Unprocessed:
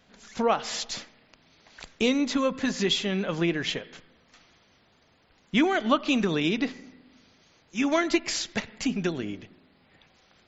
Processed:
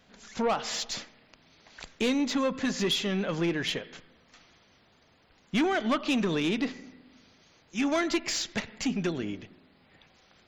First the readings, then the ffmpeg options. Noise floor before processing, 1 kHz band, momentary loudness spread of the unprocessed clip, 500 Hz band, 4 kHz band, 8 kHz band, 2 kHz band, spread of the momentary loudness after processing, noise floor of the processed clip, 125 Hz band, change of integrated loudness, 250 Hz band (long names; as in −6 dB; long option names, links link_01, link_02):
−63 dBFS, −3.0 dB, 12 LU, −2.5 dB, −2.0 dB, can't be measured, −2.5 dB, 11 LU, −63 dBFS, −1.5 dB, −2.5 dB, −2.0 dB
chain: -af "asoftclip=type=tanh:threshold=-20.5dB"